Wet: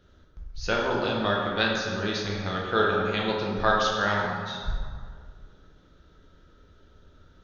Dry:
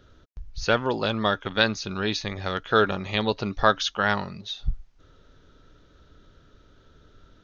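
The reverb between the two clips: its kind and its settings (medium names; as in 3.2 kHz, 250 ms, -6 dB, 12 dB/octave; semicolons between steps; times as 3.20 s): plate-style reverb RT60 2 s, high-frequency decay 0.55×, DRR -3 dB; trim -6 dB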